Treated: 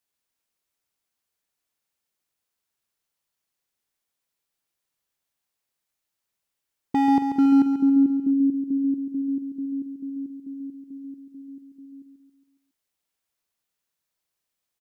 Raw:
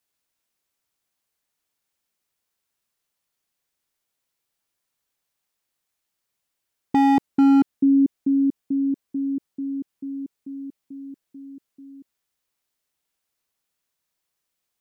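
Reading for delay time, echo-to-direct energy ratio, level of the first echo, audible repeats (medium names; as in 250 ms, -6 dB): 138 ms, -6.5 dB, -8.0 dB, 5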